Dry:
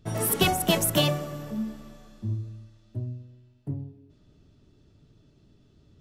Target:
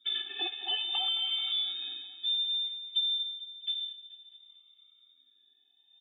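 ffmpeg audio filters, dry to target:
-filter_complex "[0:a]afftfilt=real='re*pow(10,18/40*sin(2*PI*(1.4*log(max(b,1)*sr/1024/100)/log(2)-(-0.58)*(pts-256)/sr)))':imag='im*pow(10,18/40*sin(2*PI*(1.4*log(max(b,1)*sr/1024/100)/log(2)-(-0.58)*(pts-256)/sr)))':win_size=1024:overlap=0.75,agate=range=0.251:threshold=0.00562:ratio=16:detection=peak,adynamicequalizer=threshold=0.00794:dfrequency=1500:dqfactor=2.4:tfrequency=1500:tqfactor=2.4:attack=5:release=100:ratio=0.375:range=2:mode=cutabove:tftype=bell,acrossover=split=160[s0][s1];[s1]alimiter=limit=0.178:level=0:latency=1[s2];[s0][s2]amix=inputs=2:normalize=0,acompressor=threshold=0.0355:ratio=10,asplit=2[s3][s4];[s4]asoftclip=type=hard:threshold=0.0178,volume=0.631[s5];[s3][s5]amix=inputs=2:normalize=0,aecho=1:1:218|436|654|872|1090|1308:0.2|0.12|0.0718|0.0431|0.0259|0.0155,lowpass=f=3100:t=q:w=0.5098,lowpass=f=3100:t=q:w=0.6013,lowpass=f=3100:t=q:w=0.9,lowpass=f=3100:t=q:w=2.563,afreqshift=-3700,afftfilt=real='re*eq(mod(floor(b*sr/1024/230),2),1)':imag='im*eq(mod(floor(b*sr/1024/230),2),1)':win_size=1024:overlap=0.75"

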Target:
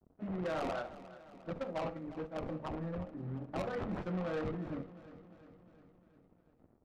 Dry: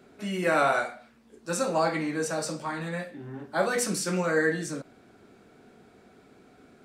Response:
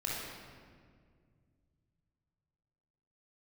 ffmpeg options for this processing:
-filter_complex "[0:a]asettb=1/sr,asplit=3[s0][s1][s2];[s0]atrim=end=1.534[s3];[s1]atrim=start=1.53:end=2.36,asetpts=PTS-STARTPTS,afade=t=in:d=0.004:c=qsin,afade=t=out:st=0.826:d=0.004:c=qsin,agate=range=0.0224:threshold=0.0794:ratio=3:detection=peak[s4];[s2]atrim=start=2.356[s5];[s3][s4]acrossfade=d=0.004:c1=hsin:c2=qsin[s6];[s6][s5]acrossfade=d=0.004:c1=qsin:c2=hsin,equalizer=f=410:w=6.3:g=-8,bandreject=f=50:t=h:w=6,bandreject=f=100:t=h:w=6,bandreject=f=150:t=h:w=6,bandreject=f=200:t=h:w=6,bandreject=f=250:t=h:w=6,acompressor=threshold=0.0112:ratio=2,acrusher=samples=15:mix=1:aa=0.000001:lfo=1:lforange=24:lforate=3.4,aeval=exprs='sgn(val(0))*max(abs(val(0))-0.002,0)':c=same,adynamicsmooth=sensitivity=2:basefreq=530,asoftclip=type=tanh:threshold=0.0168,aecho=1:1:353|706|1059|1412|1765|2118:0.158|0.0935|0.0552|0.0326|0.0192|0.0113,asplit=2[s7][s8];[1:a]atrim=start_sample=2205,atrim=end_sample=3528[s9];[s8][s9]afir=irnorm=-1:irlink=0,volume=0.188[s10];[s7][s10]amix=inputs=2:normalize=0,volume=1.41"

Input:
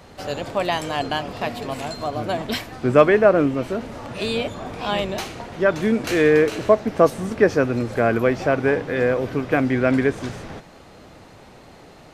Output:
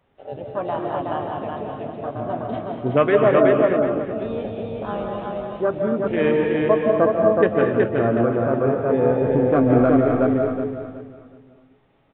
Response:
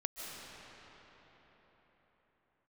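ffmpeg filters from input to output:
-filter_complex "[0:a]afwtdn=0.0891,aresample=8000,aresample=44100,asettb=1/sr,asplit=3[s0][s1][s2];[s0]atrim=end=8.884[s3];[s1]atrim=start=8.88:end=10.02,asetpts=PTS-STARTPTS,afade=t=in:d=0.004:c=qsin,afade=t=out:st=1.136:d=0.004:c=qsin,acontrast=36[s4];[s2]atrim=start=10.016[s5];[s3][s4]acrossfade=d=0.004:c1=hsin:c2=qsin[s6];[s6][s5]acrossfade=d=0.004:c1=qsin:c2=hsin,aecho=1:1:371|742|1113|1484:0.708|0.205|0.0595|0.0173[s7];[1:a]atrim=start_sample=2205,afade=t=out:st=0.32:d=0.01,atrim=end_sample=14553[s8];[s7][s8]afir=irnorm=-1:irlink=0,flanger=delay=7.3:depth=2.1:regen=73:speed=0.33:shape=sinusoidal,volume=1.5"

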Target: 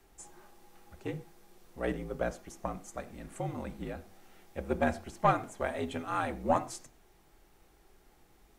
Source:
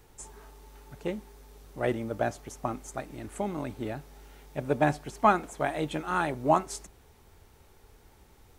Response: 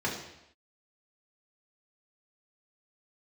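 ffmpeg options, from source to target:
-filter_complex "[0:a]afreqshift=-58,asplit=2[s0][s1];[1:a]atrim=start_sample=2205,atrim=end_sample=6174[s2];[s1][s2]afir=irnorm=-1:irlink=0,volume=0.126[s3];[s0][s3]amix=inputs=2:normalize=0,aeval=exprs='0.531*(cos(1*acos(clip(val(0)/0.531,-1,1)))-cos(1*PI/2))+0.0376*(cos(4*acos(clip(val(0)/0.531,-1,1)))-cos(4*PI/2))':c=same,volume=0.531"

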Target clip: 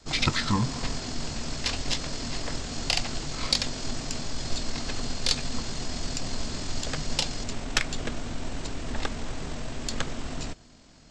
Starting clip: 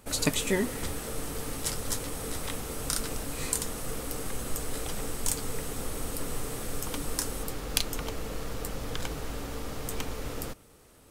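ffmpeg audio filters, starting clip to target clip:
-af "aeval=exprs='0.631*(cos(1*acos(clip(val(0)/0.631,-1,1)))-cos(1*PI/2))+0.0794*(cos(5*acos(clip(val(0)/0.631,-1,1)))-cos(5*PI/2))+0.0631*(cos(6*acos(clip(val(0)/0.631,-1,1)))-cos(6*PI/2))+0.00398*(cos(7*acos(clip(val(0)/0.631,-1,1)))-cos(7*PI/2))':c=same,adynamicequalizer=threshold=0.00562:dfrequency=350:dqfactor=1.9:tfrequency=350:tqfactor=1.9:attack=5:release=100:ratio=0.375:range=1.5:mode=cutabove:tftype=bell,asetrate=23361,aresample=44100,atempo=1.88775"

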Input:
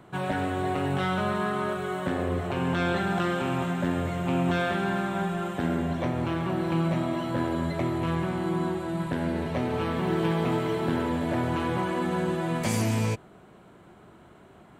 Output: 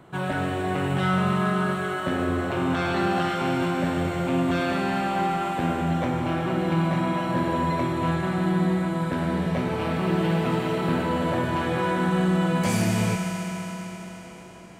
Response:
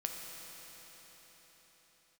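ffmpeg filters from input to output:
-filter_complex "[1:a]atrim=start_sample=2205[s0];[0:a][s0]afir=irnorm=-1:irlink=0,asplit=2[s1][s2];[s2]volume=11.9,asoftclip=hard,volume=0.0841,volume=0.299[s3];[s1][s3]amix=inputs=2:normalize=0"

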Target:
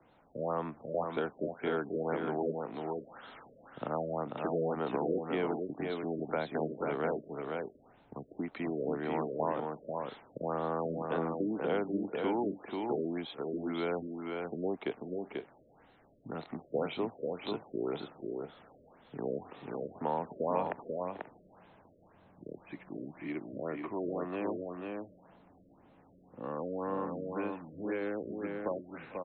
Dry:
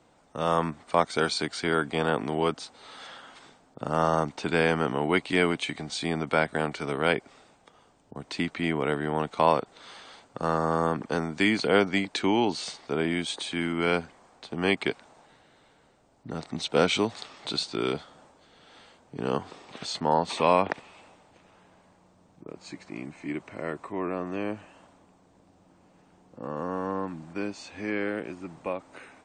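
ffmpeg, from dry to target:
-filter_complex "[0:a]acrossover=split=120|280|990[s0][s1][s2][s3];[s0]acompressor=threshold=0.00112:ratio=4[s4];[s1]acompressor=threshold=0.00708:ratio=4[s5];[s2]acompressor=threshold=0.0398:ratio=4[s6];[s3]acompressor=threshold=0.00891:ratio=4[s7];[s4][s5][s6][s7]amix=inputs=4:normalize=0,aecho=1:1:447|490|535:0.119|0.631|0.112,afftfilt=real='re*lt(b*sr/1024,620*pow(4300/620,0.5+0.5*sin(2*PI*1.9*pts/sr)))':imag='im*lt(b*sr/1024,620*pow(4300/620,0.5+0.5*sin(2*PI*1.9*pts/sr)))':win_size=1024:overlap=0.75,volume=0.708"

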